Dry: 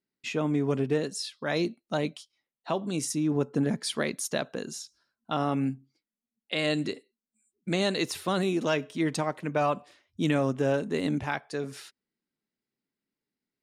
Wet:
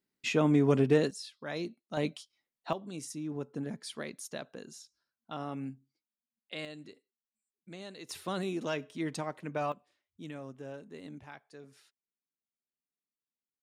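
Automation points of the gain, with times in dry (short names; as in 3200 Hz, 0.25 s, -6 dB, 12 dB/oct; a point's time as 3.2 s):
+2 dB
from 1.11 s -9 dB
from 1.97 s -2 dB
from 2.73 s -11 dB
from 6.65 s -19 dB
from 8.09 s -7.5 dB
from 9.72 s -18 dB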